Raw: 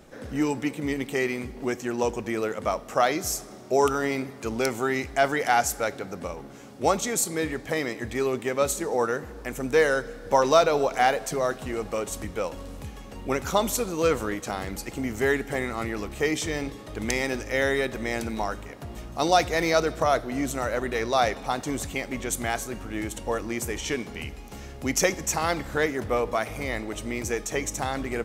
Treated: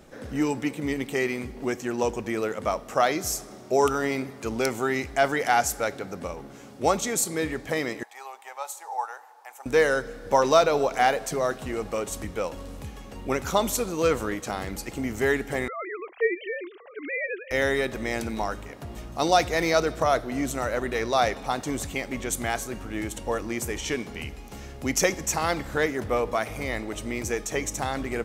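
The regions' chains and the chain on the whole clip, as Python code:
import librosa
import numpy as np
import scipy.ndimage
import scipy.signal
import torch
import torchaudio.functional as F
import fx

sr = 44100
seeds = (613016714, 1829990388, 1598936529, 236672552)

y = fx.chain(x, sr, fx.ladder_highpass(hz=790.0, resonance_pct=80),
    fx.high_shelf(hz=7700.0, db=7.0), at=(8.03, 9.66))
y = fx.chain(y, sr, fx.sine_speech(),
    fx.highpass(hz=410.0, slope=6), at=(15.68, 17.51))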